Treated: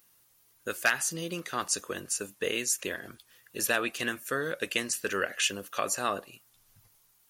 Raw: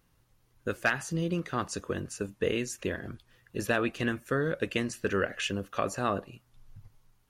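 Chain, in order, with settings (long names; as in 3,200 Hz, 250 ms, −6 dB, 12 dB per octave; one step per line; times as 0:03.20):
RIAA equalisation recording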